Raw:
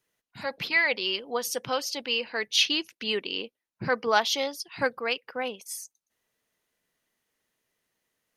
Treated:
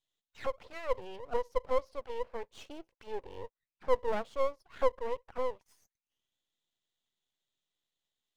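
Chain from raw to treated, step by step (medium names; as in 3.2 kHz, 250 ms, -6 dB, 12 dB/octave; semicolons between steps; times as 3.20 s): auto-wah 520–3600 Hz, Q 6.7, down, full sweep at -29.5 dBFS; half-wave rectifier; trim +7 dB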